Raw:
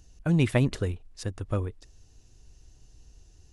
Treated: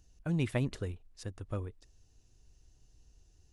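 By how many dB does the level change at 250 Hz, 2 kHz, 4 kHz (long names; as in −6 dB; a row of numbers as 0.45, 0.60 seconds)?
−8.5, −8.5, −8.5 decibels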